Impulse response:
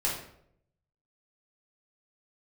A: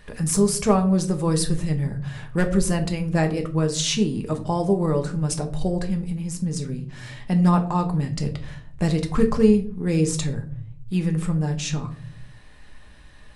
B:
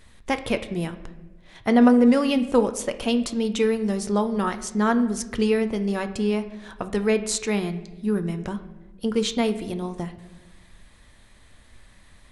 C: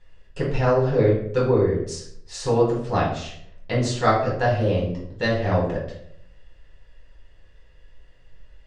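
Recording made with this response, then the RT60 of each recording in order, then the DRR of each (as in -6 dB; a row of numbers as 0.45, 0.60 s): C; 0.50, 1.1, 0.70 s; 4.0, 8.5, -5.5 dB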